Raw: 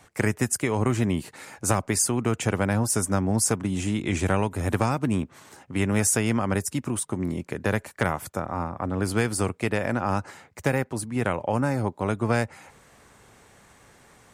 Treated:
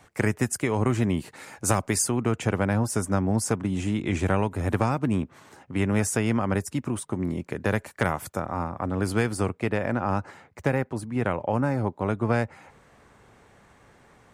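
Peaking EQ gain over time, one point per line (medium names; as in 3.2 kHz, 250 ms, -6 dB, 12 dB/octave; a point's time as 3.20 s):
peaking EQ 13 kHz 2.3 oct
1.26 s -4.5 dB
1.88 s +2.5 dB
2.18 s -8 dB
7.05 s -8 dB
8.19 s -0.5 dB
8.92 s -0.5 dB
9.56 s -11.5 dB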